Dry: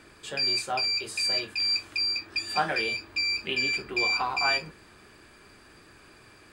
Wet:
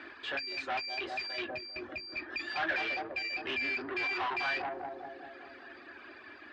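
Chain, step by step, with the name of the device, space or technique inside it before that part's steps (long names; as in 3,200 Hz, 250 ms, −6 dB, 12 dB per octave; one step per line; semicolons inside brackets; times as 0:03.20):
low shelf with overshoot 220 Hz −8 dB, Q 3
reverb reduction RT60 1.3 s
analogue delay pedal into a guitar amplifier (bucket-brigade delay 198 ms, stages 1,024, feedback 64%, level −6 dB; tube saturation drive 37 dB, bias 0.35; loudspeaker in its box 90–3,800 Hz, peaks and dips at 130 Hz −9 dB, 200 Hz −7 dB, 300 Hz −5 dB, 460 Hz −10 dB, 1,700 Hz +7 dB)
0:01.48–0:02.17: tilt shelving filter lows +5.5 dB, about 840 Hz
level +6 dB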